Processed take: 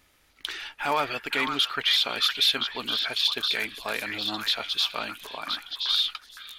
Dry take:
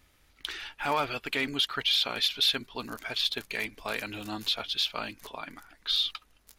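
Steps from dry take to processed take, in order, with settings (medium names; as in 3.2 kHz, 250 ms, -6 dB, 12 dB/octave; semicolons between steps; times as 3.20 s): bass shelf 170 Hz -8.5 dB; repeats whose band climbs or falls 511 ms, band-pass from 1.5 kHz, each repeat 1.4 oct, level -2 dB; trim +3 dB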